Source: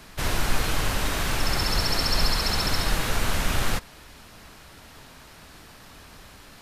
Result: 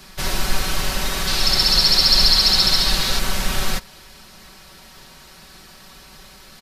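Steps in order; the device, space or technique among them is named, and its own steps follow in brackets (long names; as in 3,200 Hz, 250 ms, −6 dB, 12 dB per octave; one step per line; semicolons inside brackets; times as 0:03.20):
presence and air boost (parametric band 4,700 Hz +5.5 dB 0.92 octaves; high-shelf EQ 11,000 Hz +6 dB)
0:01.27–0:03.19: parametric band 4,200 Hz +8.5 dB 0.84 octaves
comb filter 5.3 ms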